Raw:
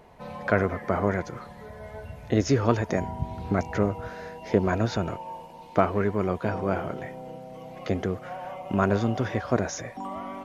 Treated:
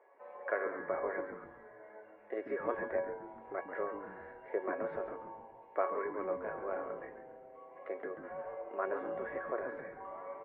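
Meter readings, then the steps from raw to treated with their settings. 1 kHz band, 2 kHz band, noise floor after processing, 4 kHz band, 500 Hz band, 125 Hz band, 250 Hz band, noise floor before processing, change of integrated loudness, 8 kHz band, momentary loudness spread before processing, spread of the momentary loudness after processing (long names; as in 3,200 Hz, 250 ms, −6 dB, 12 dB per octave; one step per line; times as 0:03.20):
−10.5 dB, −9.5 dB, −57 dBFS, below −30 dB, −9.0 dB, −33.0 dB, −19.5 dB, −45 dBFS, −12.0 dB, can't be measured, 17 LU, 16 LU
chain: elliptic band-pass filter 380–2,000 Hz, stop band 50 dB
tuned comb filter 560 Hz, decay 0.38 s, mix 90%
on a send: echo with shifted repeats 137 ms, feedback 36%, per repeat −110 Hz, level −9 dB
on the sum: level +7 dB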